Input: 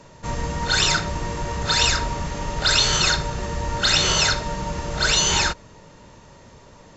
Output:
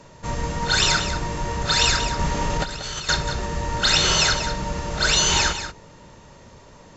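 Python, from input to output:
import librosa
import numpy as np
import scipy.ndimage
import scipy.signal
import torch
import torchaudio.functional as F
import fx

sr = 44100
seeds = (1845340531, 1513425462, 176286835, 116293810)

p1 = fx.over_compress(x, sr, threshold_db=-25.0, ratio=-0.5, at=(2.19, 3.09))
y = p1 + fx.echo_single(p1, sr, ms=186, db=-10.0, dry=0)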